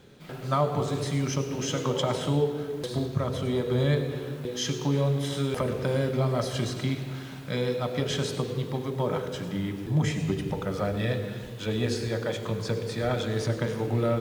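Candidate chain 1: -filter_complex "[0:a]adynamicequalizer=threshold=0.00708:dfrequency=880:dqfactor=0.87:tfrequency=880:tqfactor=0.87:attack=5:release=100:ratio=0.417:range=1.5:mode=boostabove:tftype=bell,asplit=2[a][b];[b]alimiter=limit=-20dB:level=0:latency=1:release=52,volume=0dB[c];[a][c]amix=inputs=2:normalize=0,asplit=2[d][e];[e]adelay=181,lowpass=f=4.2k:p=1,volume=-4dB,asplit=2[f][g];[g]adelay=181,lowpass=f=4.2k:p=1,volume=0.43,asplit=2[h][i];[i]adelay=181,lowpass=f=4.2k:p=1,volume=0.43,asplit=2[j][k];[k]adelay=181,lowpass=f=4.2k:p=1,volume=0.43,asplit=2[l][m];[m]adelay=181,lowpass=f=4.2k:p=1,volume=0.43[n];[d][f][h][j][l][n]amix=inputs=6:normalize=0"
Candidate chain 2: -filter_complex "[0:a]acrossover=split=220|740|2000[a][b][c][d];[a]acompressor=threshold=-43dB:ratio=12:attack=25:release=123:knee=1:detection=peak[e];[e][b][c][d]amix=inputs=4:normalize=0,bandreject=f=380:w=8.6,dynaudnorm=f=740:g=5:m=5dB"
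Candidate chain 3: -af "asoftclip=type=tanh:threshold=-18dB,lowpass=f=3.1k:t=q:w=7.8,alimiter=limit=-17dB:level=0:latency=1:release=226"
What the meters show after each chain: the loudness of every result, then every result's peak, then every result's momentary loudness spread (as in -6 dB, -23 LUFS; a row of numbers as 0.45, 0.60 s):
-21.0, -27.5, -28.5 LUFS; -7.0, -11.5, -17.0 dBFS; 5, 6, 4 LU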